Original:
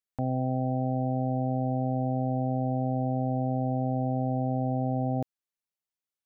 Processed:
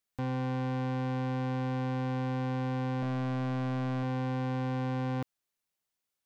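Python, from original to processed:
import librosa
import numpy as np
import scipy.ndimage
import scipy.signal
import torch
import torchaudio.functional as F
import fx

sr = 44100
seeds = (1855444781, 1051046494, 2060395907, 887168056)

y = fx.peak_eq(x, sr, hz=200.0, db=10.5, octaves=0.24, at=(3.02, 4.03))
y = 10.0 ** (-36.0 / 20.0) * np.tanh(y / 10.0 ** (-36.0 / 20.0))
y = y * 10.0 ** (6.0 / 20.0)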